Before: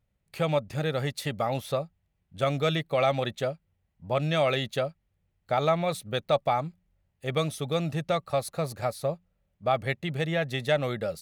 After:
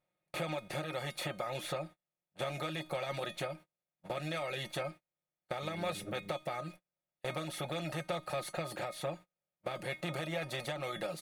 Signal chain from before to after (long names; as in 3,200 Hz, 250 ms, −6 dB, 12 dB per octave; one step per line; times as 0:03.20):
compressor on every frequency bin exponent 0.4
tuned comb filter 310 Hz, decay 0.37 s, harmonics all, mix 80%
0:05.61–0:06.32: hum with harmonics 100 Hz, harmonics 5, −45 dBFS −3 dB per octave
noise gate −42 dBFS, range −34 dB
in parallel at −2 dB: brickwall limiter −28 dBFS, peak gain reduction 11 dB
on the sum: reverb reduction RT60 0.73 s
downward compressor, threshold −31 dBFS, peak gain reduction 8 dB
comb filter 5.6 ms, depth 57%
level −3.5 dB